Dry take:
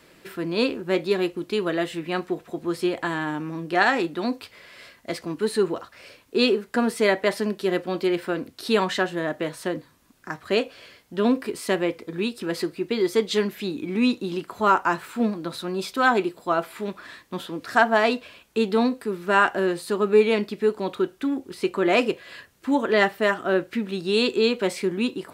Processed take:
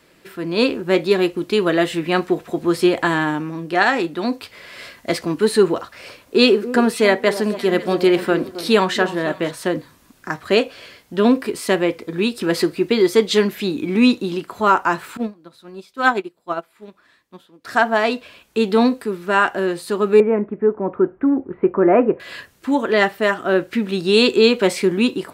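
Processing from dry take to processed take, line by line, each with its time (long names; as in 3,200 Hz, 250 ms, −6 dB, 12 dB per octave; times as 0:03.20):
0:05.79–0:09.51: delay that swaps between a low-pass and a high-pass 271 ms, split 1,200 Hz, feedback 53%, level −12 dB
0:15.17–0:17.65: expander for the loud parts 2.5 to 1, over −31 dBFS
0:20.20–0:22.20: Bessel low-pass filter 1,100 Hz, order 8
whole clip: automatic gain control; level −1 dB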